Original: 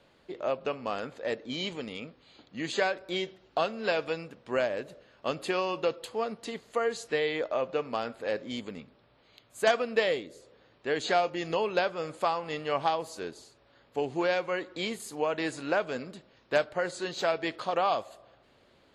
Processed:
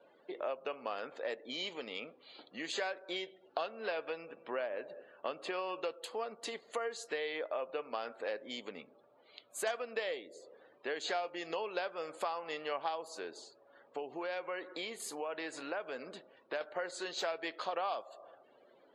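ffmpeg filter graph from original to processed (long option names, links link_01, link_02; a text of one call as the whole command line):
ffmpeg -i in.wav -filter_complex "[0:a]asettb=1/sr,asplit=3[link_01][link_02][link_03];[link_01]atrim=end=3.684[link_04];[link_02]atrim=start=3.68:end=5.81,asetpts=PTS-STARTPTS,afade=type=in:duration=0.004:curve=qsin,afade=type=out:start_time=2.126:duration=0.004:curve=qsin,highshelf=frequency=5400:gain=-11,aecho=1:1:195:0.0708,atrim=end_sample=93933[link_05];[link_03]atrim=start=5.806[link_06];[link_04][link_05]acrossfade=duration=0.004:curve1=hsin:curve2=qsin[link_07];[link_07][link_06]acrossfade=duration=0.004:curve1=qsin:curve2=hsin,asettb=1/sr,asplit=3[link_08][link_09][link_10];[link_08]atrim=end=13.084[link_11];[link_09]atrim=start=13.08:end=16.61,asetpts=PTS-STARTPTS,afade=type=in:duration=0.004:curve=qsin,afade=type=out:start_time=3.526:duration=0.004:curve=qsin,highshelf=frequency=5000:gain=-4,acompressor=threshold=-39dB:ratio=1.5:attack=3.2:release=140:knee=1:detection=peak[link_12];[link_10]atrim=start=16.606[link_13];[link_11][link_12]acrossfade=duration=0.004:curve1=hsin:curve2=qsin[link_14];[link_14][link_13]acrossfade=duration=0.004:curve1=qsin:curve2=hsin,acompressor=threshold=-41dB:ratio=3,afftdn=noise_reduction=23:noise_floor=-62,highpass=410,volume=4dB" out.wav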